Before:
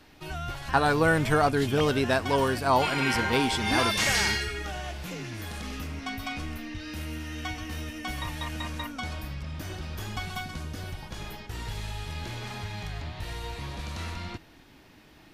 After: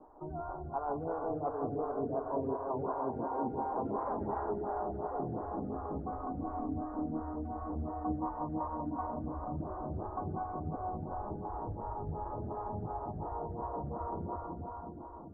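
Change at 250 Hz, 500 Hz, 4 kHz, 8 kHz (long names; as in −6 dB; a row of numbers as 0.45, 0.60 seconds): −6.0 dB, −6.5 dB, below −40 dB, below −40 dB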